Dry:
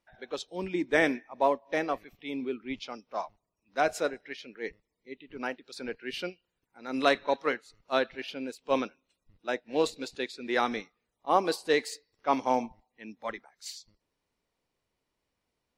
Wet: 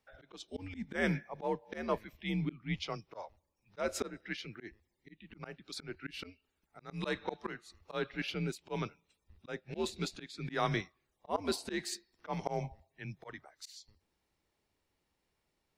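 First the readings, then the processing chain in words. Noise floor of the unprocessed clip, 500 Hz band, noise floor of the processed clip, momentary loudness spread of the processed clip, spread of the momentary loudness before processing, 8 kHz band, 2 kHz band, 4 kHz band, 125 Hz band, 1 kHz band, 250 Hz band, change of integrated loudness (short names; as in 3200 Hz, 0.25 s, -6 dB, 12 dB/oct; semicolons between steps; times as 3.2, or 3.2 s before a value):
-84 dBFS, -9.5 dB, -82 dBFS, 16 LU, 16 LU, -2.5 dB, -8.0 dB, -5.5 dB, +9.0 dB, -11.0 dB, -5.5 dB, -7.5 dB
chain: frequency shift -95 Hz; auto swell 0.245 s; gain +1 dB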